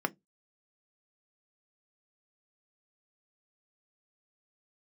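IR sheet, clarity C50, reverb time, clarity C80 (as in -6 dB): 29.0 dB, 0.15 s, 39.0 dB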